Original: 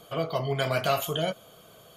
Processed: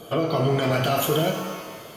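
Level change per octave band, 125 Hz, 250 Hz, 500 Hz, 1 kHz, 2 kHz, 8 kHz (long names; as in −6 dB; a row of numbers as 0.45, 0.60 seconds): +7.0, +10.5, +5.0, +4.5, +3.0, +7.0 decibels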